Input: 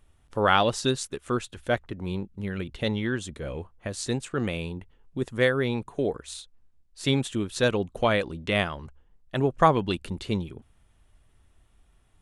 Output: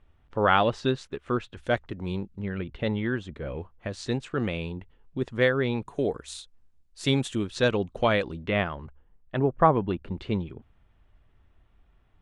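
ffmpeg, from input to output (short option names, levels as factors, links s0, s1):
-af "asetnsamples=n=441:p=0,asendcmd='1.57 lowpass f 6600;2.39 lowpass f 2600;3.61 lowpass f 4300;5.85 lowpass f 9600;7.47 lowpass f 5400;8.43 lowpass f 2400;9.39 lowpass f 1500;10.1 lowpass f 2800',lowpass=2900"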